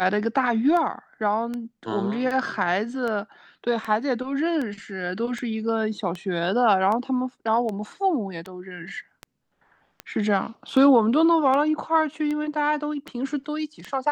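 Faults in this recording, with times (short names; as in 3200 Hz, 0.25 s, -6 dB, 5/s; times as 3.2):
tick 78 rpm -18 dBFS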